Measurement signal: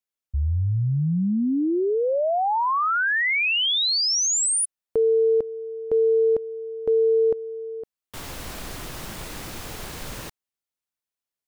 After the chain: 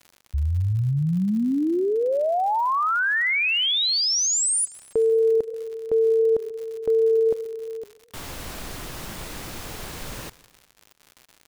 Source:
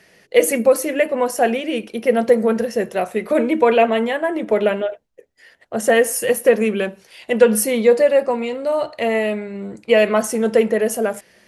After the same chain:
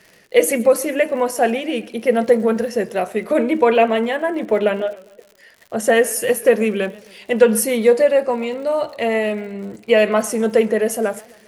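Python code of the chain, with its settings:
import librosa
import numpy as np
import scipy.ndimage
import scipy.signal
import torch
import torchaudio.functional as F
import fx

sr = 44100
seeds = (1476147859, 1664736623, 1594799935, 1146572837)

y = fx.dmg_crackle(x, sr, seeds[0], per_s=100.0, level_db=-35.0)
y = fx.echo_warbled(y, sr, ms=134, feedback_pct=49, rate_hz=2.8, cents=154, wet_db=-22)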